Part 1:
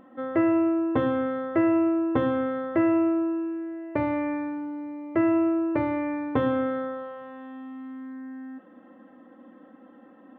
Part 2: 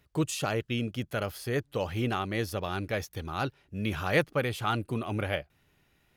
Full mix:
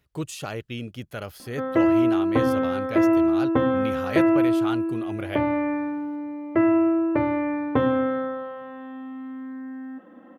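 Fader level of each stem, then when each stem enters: +3.0 dB, -2.5 dB; 1.40 s, 0.00 s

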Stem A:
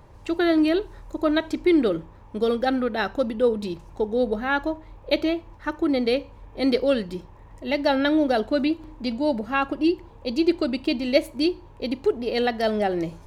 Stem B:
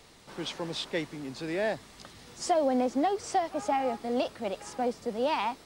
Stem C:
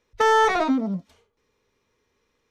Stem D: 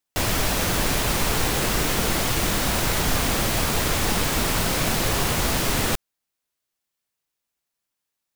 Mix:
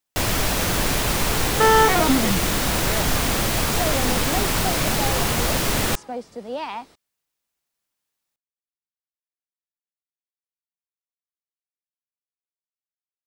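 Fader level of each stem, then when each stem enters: mute, -1.5 dB, +2.0 dB, +1.0 dB; mute, 1.30 s, 1.40 s, 0.00 s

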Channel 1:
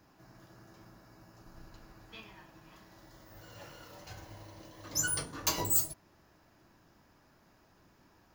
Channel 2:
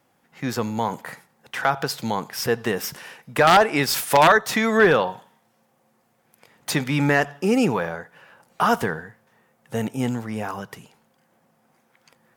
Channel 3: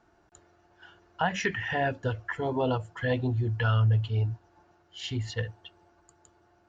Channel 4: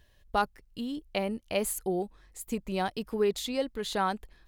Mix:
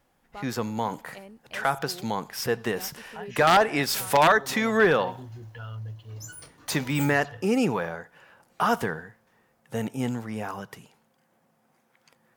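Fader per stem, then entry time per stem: -11.5 dB, -4.0 dB, -14.0 dB, -14.5 dB; 1.25 s, 0.00 s, 1.95 s, 0.00 s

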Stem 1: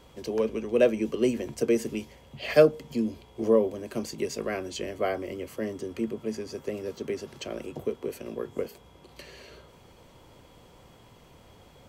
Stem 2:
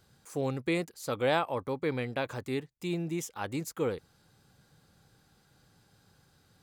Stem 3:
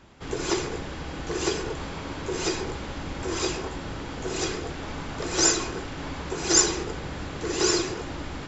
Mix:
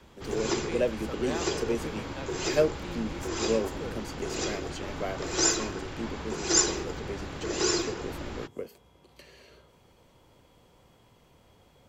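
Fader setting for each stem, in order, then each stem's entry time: -6.0 dB, -9.0 dB, -3.5 dB; 0.00 s, 0.00 s, 0.00 s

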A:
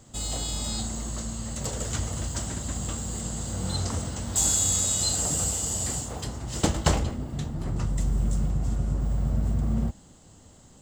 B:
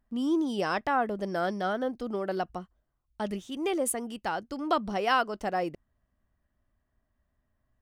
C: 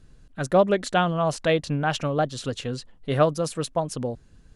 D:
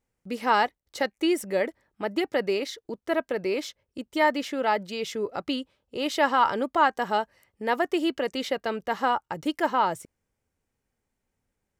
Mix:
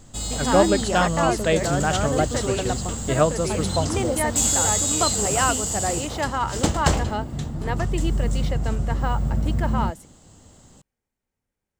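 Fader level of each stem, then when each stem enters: +2.5 dB, +2.5 dB, +0.5 dB, -4.0 dB; 0.00 s, 0.30 s, 0.00 s, 0.00 s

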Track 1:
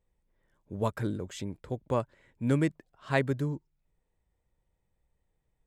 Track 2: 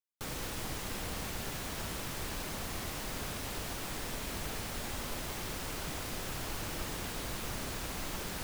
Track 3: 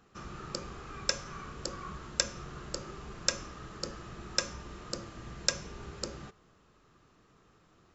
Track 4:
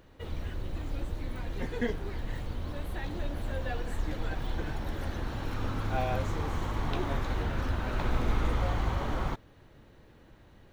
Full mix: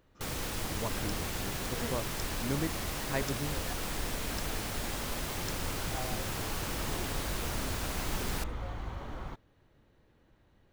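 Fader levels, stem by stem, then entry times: -7.5 dB, +2.5 dB, -16.5 dB, -9.5 dB; 0.00 s, 0.00 s, 0.00 s, 0.00 s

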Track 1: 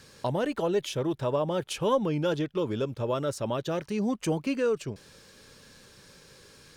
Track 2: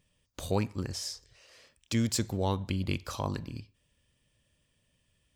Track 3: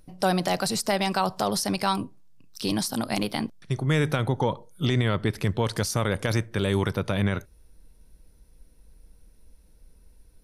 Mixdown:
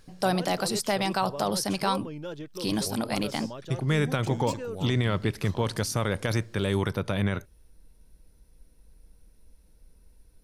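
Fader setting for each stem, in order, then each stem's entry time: -10.0 dB, -9.5 dB, -2.0 dB; 0.00 s, 2.35 s, 0.00 s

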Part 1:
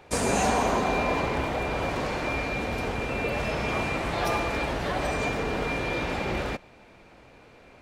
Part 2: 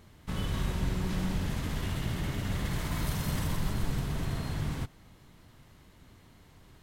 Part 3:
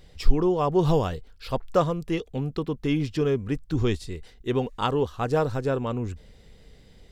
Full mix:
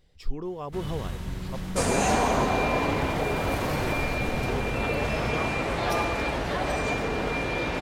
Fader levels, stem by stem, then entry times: +0.5 dB, -3.0 dB, -11.5 dB; 1.65 s, 0.45 s, 0.00 s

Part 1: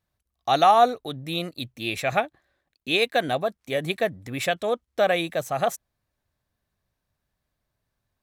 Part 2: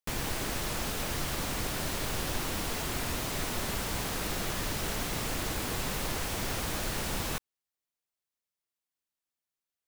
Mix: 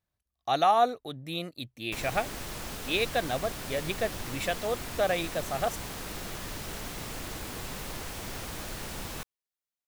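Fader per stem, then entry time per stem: -6.0 dB, -5.0 dB; 0.00 s, 1.85 s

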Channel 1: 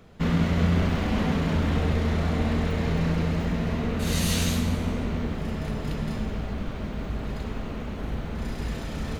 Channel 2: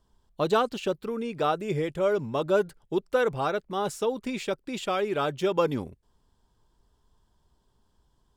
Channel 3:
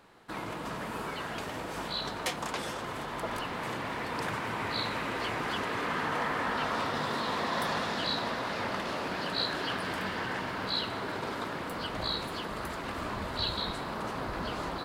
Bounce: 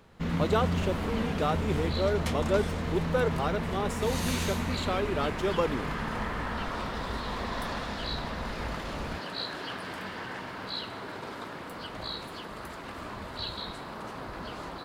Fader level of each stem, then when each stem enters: -7.0 dB, -3.5 dB, -4.0 dB; 0.00 s, 0.00 s, 0.00 s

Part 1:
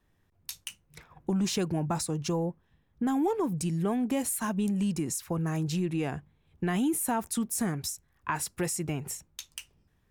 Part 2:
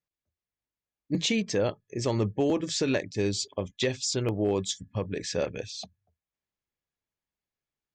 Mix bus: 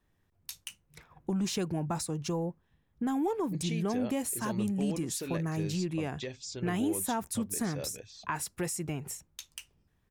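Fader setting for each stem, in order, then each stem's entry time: -3.0 dB, -12.0 dB; 0.00 s, 2.40 s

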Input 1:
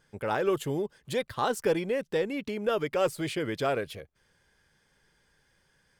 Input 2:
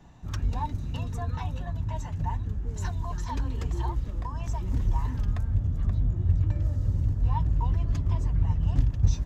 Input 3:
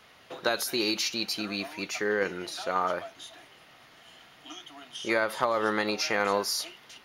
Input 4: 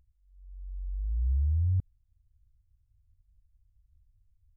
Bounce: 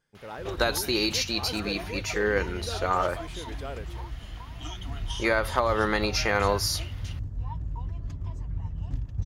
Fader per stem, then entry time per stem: -10.5 dB, -8.5 dB, +2.0 dB, -11.0 dB; 0.00 s, 0.15 s, 0.15 s, 1.10 s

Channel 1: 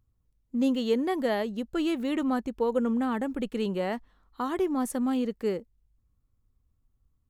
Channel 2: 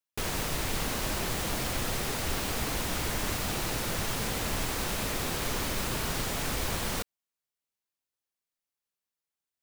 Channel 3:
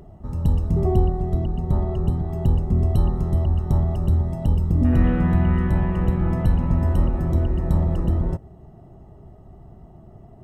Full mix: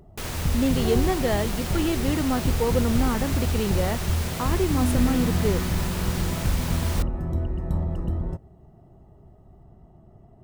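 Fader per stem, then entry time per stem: +2.0 dB, -1.0 dB, -6.0 dB; 0.00 s, 0.00 s, 0.00 s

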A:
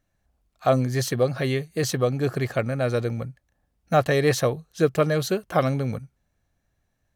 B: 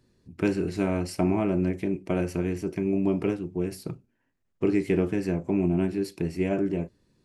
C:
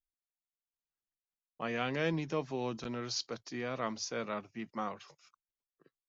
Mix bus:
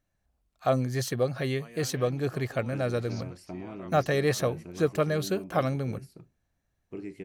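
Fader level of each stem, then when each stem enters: -5.0 dB, -15.5 dB, -13.0 dB; 0.00 s, 2.30 s, 0.00 s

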